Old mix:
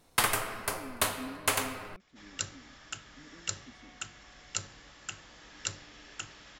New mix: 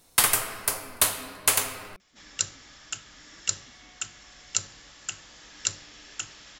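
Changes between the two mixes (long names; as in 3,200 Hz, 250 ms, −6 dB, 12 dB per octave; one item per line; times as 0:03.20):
speech −7.5 dB
master: add high-shelf EQ 3,900 Hz +11.5 dB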